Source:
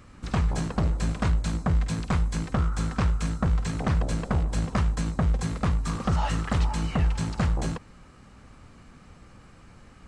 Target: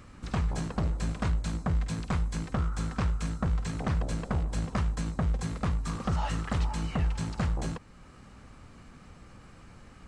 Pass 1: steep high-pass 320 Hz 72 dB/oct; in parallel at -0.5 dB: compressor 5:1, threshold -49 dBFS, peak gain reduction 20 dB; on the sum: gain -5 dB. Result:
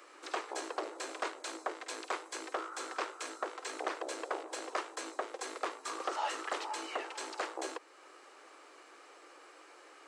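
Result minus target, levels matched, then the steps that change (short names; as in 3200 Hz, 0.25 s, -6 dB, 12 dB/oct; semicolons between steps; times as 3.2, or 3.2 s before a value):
250 Hz band -7.0 dB
remove: steep high-pass 320 Hz 72 dB/oct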